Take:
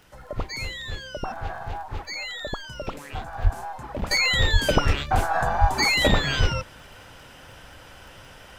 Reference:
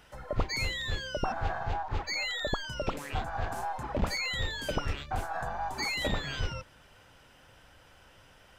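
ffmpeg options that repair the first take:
-filter_complex "[0:a]adeclick=t=4,asplit=3[s0][s1][s2];[s0]afade=t=out:st=3.43:d=0.02[s3];[s1]highpass=f=140:w=0.5412,highpass=f=140:w=1.3066,afade=t=in:st=3.43:d=0.02,afade=t=out:st=3.55:d=0.02[s4];[s2]afade=t=in:st=3.55:d=0.02[s5];[s3][s4][s5]amix=inputs=3:normalize=0,asplit=3[s6][s7][s8];[s6]afade=t=out:st=4.52:d=0.02[s9];[s7]highpass=f=140:w=0.5412,highpass=f=140:w=1.3066,afade=t=in:st=4.52:d=0.02,afade=t=out:st=4.64:d=0.02[s10];[s8]afade=t=in:st=4.64:d=0.02[s11];[s9][s10][s11]amix=inputs=3:normalize=0,asplit=3[s12][s13][s14];[s12]afade=t=out:st=5.6:d=0.02[s15];[s13]highpass=f=140:w=0.5412,highpass=f=140:w=1.3066,afade=t=in:st=5.6:d=0.02,afade=t=out:st=5.72:d=0.02[s16];[s14]afade=t=in:st=5.72:d=0.02[s17];[s15][s16][s17]amix=inputs=3:normalize=0,agate=range=0.0891:threshold=0.0126,asetnsamples=n=441:p=0,asendcmd='4.11 volume volume -11.5dB',volume=1"

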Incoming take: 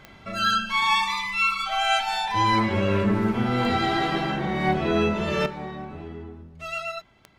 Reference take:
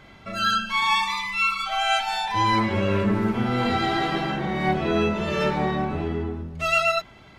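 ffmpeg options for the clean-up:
-af "adeclick=t=4,asetnsamples=n=441:p=0,asendcmd='5.46 volume volume 10.5dB',volume=1"

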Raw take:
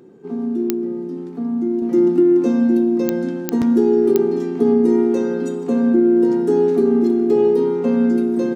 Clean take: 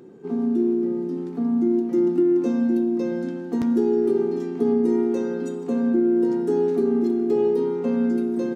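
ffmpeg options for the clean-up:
-af "adeclick=t=4,asetnsamples=n=441:p=0,asendcmd='1.82 volume volume -5.5dB',volume=1"

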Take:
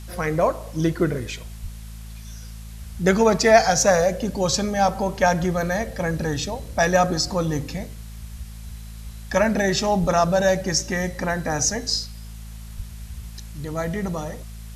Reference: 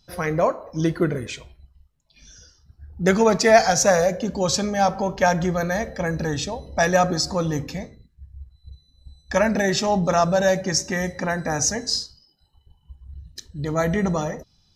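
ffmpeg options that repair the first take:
-filter_complex "[0:a]bandreject=f=54.7:t=h:w=4,bandreject=f=109.4:t=h:w=4,bandreject=f=164.1:t=h:w=4,bandreject=f=218.8:t=h:w=4,asplit=3[s0][s1][s2];[s0]afade=t=out:st=1.62:d=0.02[s3];[s1]highpass=f=140:w=0.5412,highpass=f=140:w=1.3066,afade=t=in:st=1.62:d=0.02,afade=t=out:st=1.74:d=0.02[s4];[s2]afade=t=in:st=1.74:d=0.02[s5];[s3][s4][s5]amix=inputs=3:normalize=0,asplit=3[s6][s7][s8];[s6]afade=t=out:st=10:d=0.02[s9];[s7]highpass=f=140:w=0.5412,highpass=f=140:w=1.3066,afade=t=in:st=10:d=0.02,afade=t=out:st=10.12:d=0.02[s10];[s8]afade=t=in:st=10.12:d=0.02[s11];[s9][s10][s11]amix=inputs=3:normalize=0,asplit=3[s12][s13][s14];[s12]afade=t=out:st=12.76:d=0.02[s15];[s13]highpass=f=140:w=0.5412,highpass=f=140:w=1.3066,afade=t=in:st=12.76:d=0.02,afade=t=out:st=12.88:d=0.02[s16];[s14]afade=t=in:st=12.88:d=0.02[s17];[s15][s16][s17]amix=inputs=3:normalize=0,afwtdn=0.004,asetnsamples=n=441:p=0,asendcmd='13.31 volume volume 5dB',volume=1"

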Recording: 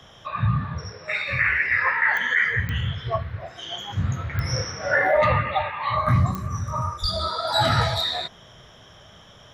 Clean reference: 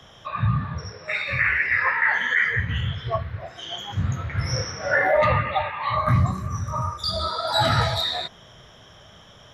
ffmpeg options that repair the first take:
-filter_complex "[0:a]adeclick=t=4,asplit=3[s0][s1][s2];[s0]afade=t=out:st=7.01:d=0.02[s3];[s1]highpass=f=140:w=0.5412,highpass=f=140:w=1.3066,afade=t=in:st=7.01:d=0.02,afade=t=out:st=7.13:d=0.02[s4];[s2]afade=t=in:st=7.13:d=0.02[s5];[s3][s4][s5]amix=inputs=3:normalize=0"

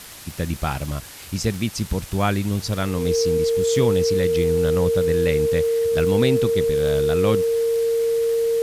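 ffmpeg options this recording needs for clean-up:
-af "adeclick=t=4,bandreject=f=460:w=30,afwtdn=0.011"

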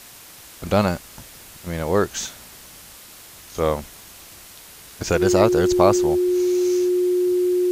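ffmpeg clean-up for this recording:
-af "bandreject=f=360:w=30,afwtdn=0.0079"

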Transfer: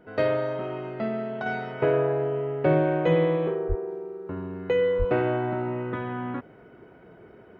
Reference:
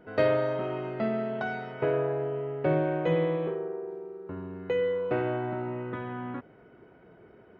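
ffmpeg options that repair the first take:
-filter_complex "[0:a]asplit=3[s0][s1][s2];[s0]afade=t=out:st=3.68:d=0.02[s3];[s1]highpass=f=140:w=0.5412,highpass=f=140:w=1.3066,afade=t=in:st=3.68:d=0.02,afade=t=out:st=3.8:d=0.02[s4];[s2]afade=t=in:st=3.8:d=0.02[s5];[s3][s4][s5]amix=inputs=3:normalize=0,asplit=3[s6][s7][s8];[s6]afade=t=out:st=4.98:d=0.02[s9];[s7]highpass=f=140:w=0.5412,highpass=f=140:w=1.3066,afade=t=in:st=4.98:d=0.02,afade=t=out:st=5.1:d=0.02[s10];[s8]afade=t=in:st=5.1:d=0.02[s11];[s9][s10][s11]amix=inputs=3:normalize=0,asetnsamples=n=441:p=0,asendcmd='1.46 volume volume -4.5dB',volume=1"

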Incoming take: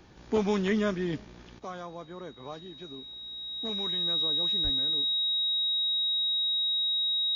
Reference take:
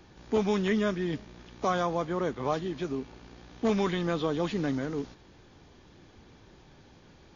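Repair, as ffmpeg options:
-filter_complex "[0:a]bandreject=f=3800:w=30,asplit=3[s0][s1][s2];[s0]afade=t=out:st=4.63:d=0.02[s3];[s1]highpass=f=140:w=0.5412,highpass=f=140:w=1.3066,afade=t=in:st=4.63:d=0.02,afade=t=out:st=4.75:d=0.02[s4];[s2]afade=t=in:st=4.75:d=0.02[s5];[s3][s4][s5]amix=inputs=3:normalize=0,asetnsamples=n=441:p=0,asendcmd='1.59 volume volume 12dB',volume=1"

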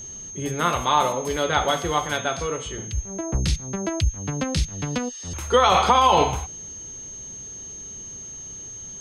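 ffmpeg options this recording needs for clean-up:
-af "bandreject=f=6400:w=30"

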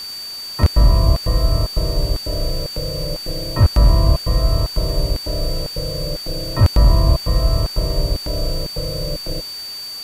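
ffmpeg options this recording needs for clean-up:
-af "bandreject=f=4600:w=30,afwtdn=0.013"

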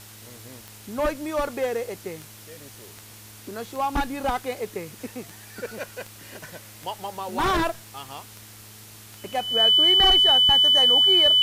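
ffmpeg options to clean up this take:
-af "adeclick=t=4,bandreject=f=107.2:t=h:w=4,bandreject=f=214.4:t=h:w=4,bandreject=f=321.6:t=h:w=4,bandreject=f=428.8:t=h:w=4,bandreject=f=3000:w=30,afftdn=nr=21:nf=-45"

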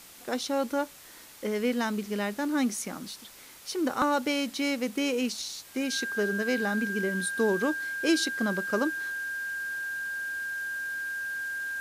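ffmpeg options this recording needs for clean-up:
-af "bandreject=f=1600:w=30,afwtdn=0.0035"

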